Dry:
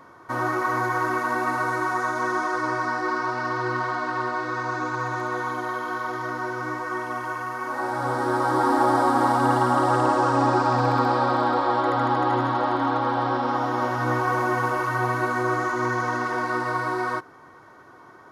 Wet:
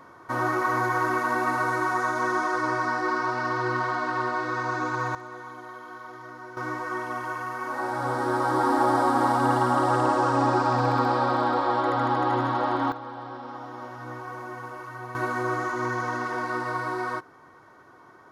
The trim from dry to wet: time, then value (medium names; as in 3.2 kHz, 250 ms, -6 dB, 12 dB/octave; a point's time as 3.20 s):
-0.5 dB
from 5.15 s -12.5 dB
from 6.57 s -2 dB
from 12.92 s -14 dB
from 15.15 s -3.5 dB